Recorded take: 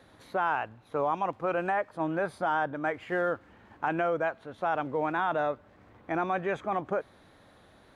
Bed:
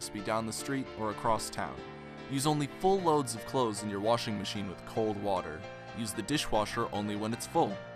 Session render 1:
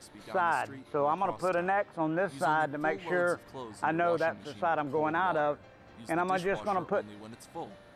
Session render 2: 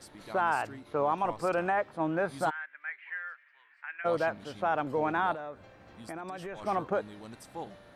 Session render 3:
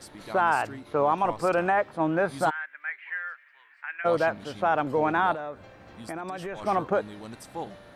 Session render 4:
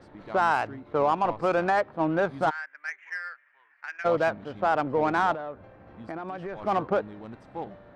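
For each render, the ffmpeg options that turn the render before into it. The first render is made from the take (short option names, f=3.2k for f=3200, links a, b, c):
-filter_complex "[1:a]volume=-12.5dB[a];[0:a][a]amix=inputs=2:normalize=0"
-filter_complex "[0:a]asplit=3[a][b][c];[a]afade=t=out:st=2.49:d=0.02[d];[b]asuperpass=centerf=2000:order=4:qfactor=2.3,afade=t=in:st=2.49:d=0.02,afade=t=out:st=4.04:d=0.02[e];[c]afade=t=in:st=4.04:d=0.02[f];[d][e][f]amix=inputs=3:normalize=0,asettb=1/sr,asplit=3[g][h][i];[g]atrim=end=5.324[j];[h]atrim=start=5.32:end=6.63,asetpts=PTS-STARTPTS,afade=t=in:d=0.004:c=qsin,afade=t=out:st=1.306:d=0.004:c=qsin,acompressor=threshold=-37dB:ratio=5:attack=3.2:release=140:knee=1:detection=peak[k];[i]atrim=start=6.626[l];[j][k]acrossfade=d=0.004:c1=hsin:c2=qsin[m];[m][l]acrossfade=d=0.004:c1=qsin:c2=hsin"
-af "volume=5dB"
-af "adynamicsmooth=sensitivity=2.5:basefreq=1.7k"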